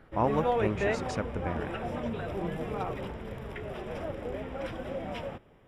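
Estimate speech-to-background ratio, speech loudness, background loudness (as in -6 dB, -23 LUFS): 1.0 dB, -33.5 LUFS, -34.5 LUFS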